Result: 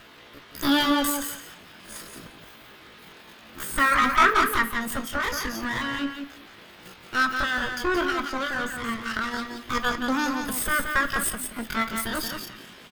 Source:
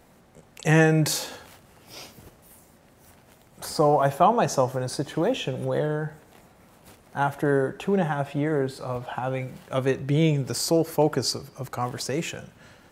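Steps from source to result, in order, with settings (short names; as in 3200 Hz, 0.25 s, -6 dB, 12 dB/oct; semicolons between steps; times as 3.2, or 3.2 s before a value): minimum comb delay 1.1 ms; reverb removal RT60 0.68 s; dynamic EQ 640 Hz, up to +5 dB, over -39 dBFS, Q 2.8; in parallel at -0.5 dB: compressor, threshold -33 dBFS, peak gain reduction 18.5 dB; on the sum: band noise 160–2000 Hz -50 dBFS; pitch shift +10.5 st; feedback echo 0.175 s, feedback 16%, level -6 dB; on a send at -9 dB: reverb RT60 0.45 s, pre-delay 3 ms; on the sum: gain -1 dB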